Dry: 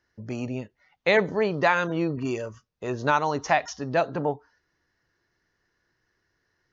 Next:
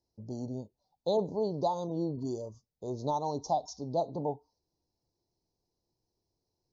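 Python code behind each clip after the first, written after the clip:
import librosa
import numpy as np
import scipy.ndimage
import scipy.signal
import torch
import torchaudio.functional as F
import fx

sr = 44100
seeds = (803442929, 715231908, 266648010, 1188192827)

y = scipy.signal.sosfilt(scipy.signal.ellip(3, 1.0, 50, [880.0, 4100.0], 'bandstop', fs=sr, output='sos'), x)
y = fx.peak_eq(y, sr, hz=2700.0, db=-9.5, octaves=0.21)
y = y * 10.0 ** (-6.0 / 20.0)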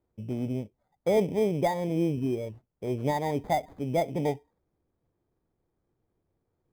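y = fx.env_lowpass_down(x, sr, base_hz=1600.0, full_db=-28.5)
y = fx.sample_hold(y, sr, seeds[0], rate_hz=2800.0, jitter_pct=0)
y = fx.tilt_shelf(y, sr, db=7.5, hz=1300.0)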